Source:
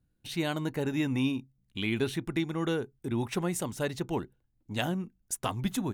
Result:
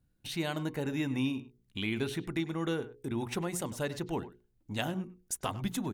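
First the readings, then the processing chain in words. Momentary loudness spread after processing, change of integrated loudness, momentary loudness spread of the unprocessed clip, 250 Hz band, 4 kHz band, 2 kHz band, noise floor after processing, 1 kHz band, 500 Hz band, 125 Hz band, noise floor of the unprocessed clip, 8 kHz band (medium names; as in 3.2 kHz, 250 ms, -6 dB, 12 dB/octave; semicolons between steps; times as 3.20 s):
6 LU, -3.0 dB, 7 LU, -3.0 dB, -2.0 dB, -2.5 dB, -72 dBFS, -2.5 dB, -3.0 dB, -3.0 dB, -74 dBFS, -2.0 dB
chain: hum notches 60/120/180/240/300/360/420/480 Hz; in parallel at 0 dB: compression, threshold -40 dBFS, peak gain reduction 15 dB; on the sum: speakerphone echo 100 ms, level -15 dB; trim -4.5 dB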